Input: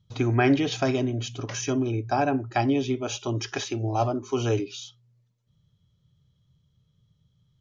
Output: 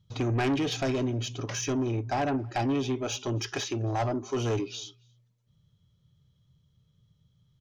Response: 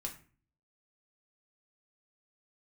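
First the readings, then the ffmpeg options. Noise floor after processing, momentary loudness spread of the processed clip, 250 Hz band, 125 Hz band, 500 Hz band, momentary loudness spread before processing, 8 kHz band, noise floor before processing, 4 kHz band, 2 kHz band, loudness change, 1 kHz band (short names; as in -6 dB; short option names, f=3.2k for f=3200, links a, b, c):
-69 dBFS, 5 LU, -4.0 dB, -3.0 dB, -4.0 dB, 9 LU, n/a, -69 dBFS, -1.0 dB, -4.5 dB, -3.5 dB, -4.5 dB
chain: -filter_complex "[0:a]asoftclip=type=tanh:threshold=-23dB,asplit=2[a][b];[b]adelay=274.1,volume=-27dB,highshelf=f=4k:g=-6.17[c];[a][c]amix=inputs=2:normalize=0"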